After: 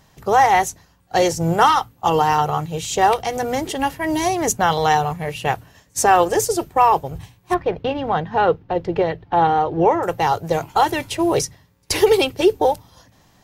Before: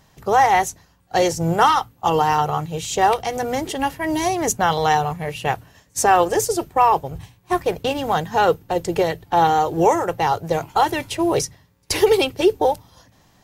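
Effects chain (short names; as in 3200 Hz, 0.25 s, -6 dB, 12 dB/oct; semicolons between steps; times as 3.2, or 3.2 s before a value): 7.54–10.03 air absorption 290 m; gain +1 dB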